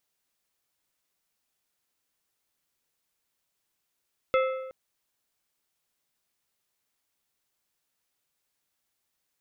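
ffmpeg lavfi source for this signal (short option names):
-f lavfi -i "aevalsrc='0.106*pow(10,-3*t/1.1)*sin(2*PI*523*t)+0.0596*pow(10,-3*t/0.836)*sin(2*PI*1307.5*t)+0.0335*pow(10,-3*t/0.726)*sin(2*PI*2092*t)+0.0188*pow(10,-3*t/0.679)*sin(2*PI*2615*t)+0.0106*pow(10,-3*t/0.627)*sin(2*PI*3399.5*t)':d=0.37:s=44100"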